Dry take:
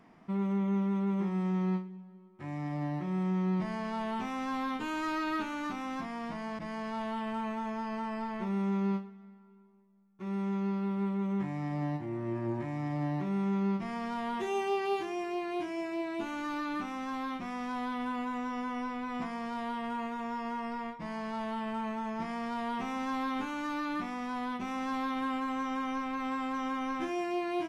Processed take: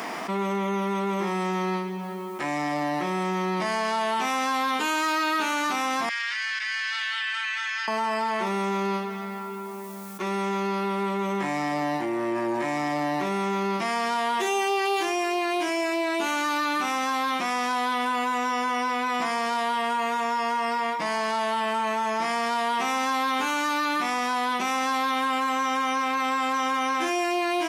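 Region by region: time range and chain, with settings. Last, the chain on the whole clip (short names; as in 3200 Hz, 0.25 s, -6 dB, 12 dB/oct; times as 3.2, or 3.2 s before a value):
6.09–7.88 Chebyshev high-pass 1600 Hz, order 4 + air absorption 120 m + doubler 30 ms -12.5 dB
whole clip: HPF 430 Hz 12 dB/oct; high shelf 4100 Hz +11 dB; fast leveller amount 70%; gain +6.5 dB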